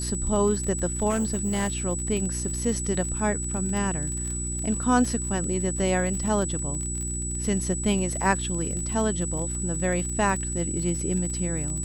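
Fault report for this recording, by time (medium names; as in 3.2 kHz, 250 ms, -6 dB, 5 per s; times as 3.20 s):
crackle 37 per s -30 dBFS
hum 60 Hz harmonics 6 -32 dBFS
whine 7.9 kHz -31 dBFS
1.09–1.77 s: clipped -21 dBFS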